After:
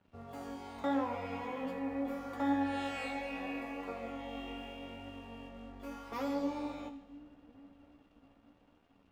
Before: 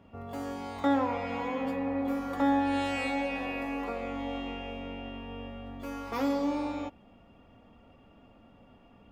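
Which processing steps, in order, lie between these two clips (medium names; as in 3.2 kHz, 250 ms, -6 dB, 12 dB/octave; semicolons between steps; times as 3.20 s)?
two-band feedback delay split 410 Hz, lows 675 ms, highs 82 ms, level -14 dB; crossover distortion -57.5 dBFS; flange 0.78 Hz, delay 10 ms, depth 9.5 ms, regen +43%; trim -2.5 dB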